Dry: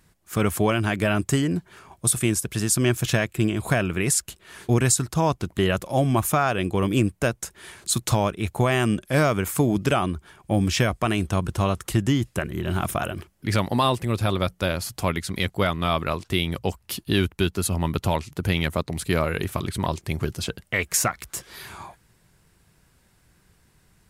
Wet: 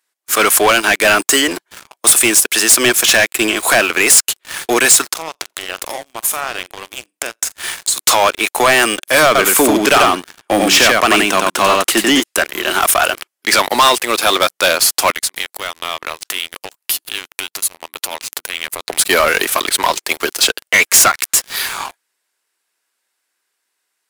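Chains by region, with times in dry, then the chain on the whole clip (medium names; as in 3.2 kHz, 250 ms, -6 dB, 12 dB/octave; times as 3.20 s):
5.11–7.98 s: compression 16:1, threshold -33 dBFS + flutter echo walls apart 7.5 m, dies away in 0.25 s
9.26–12.20 s: tone controls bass +12 dB, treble -4 dB + delay 90 ms -3.5 dB
15.10–18.89 s: treble shelf 9.2 kHz +11.5 dB + compression 8:1, threshold -34 dBFS + loudspeaker Doppler distortion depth 0.11 ms
whole clip: Bessel high-pass 490 Hz, order 8; tilt shelf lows -4.5 dB; waveshaping leveller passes 5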